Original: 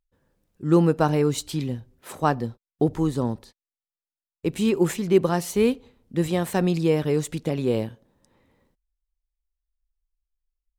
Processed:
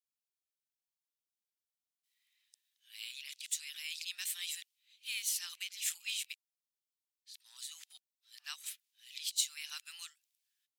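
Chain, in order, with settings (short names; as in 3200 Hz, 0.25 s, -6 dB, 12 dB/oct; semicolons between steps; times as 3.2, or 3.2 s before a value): whole clip reversed; inverse Chebyshev high-pass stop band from 450 Hz, stop band 80 dB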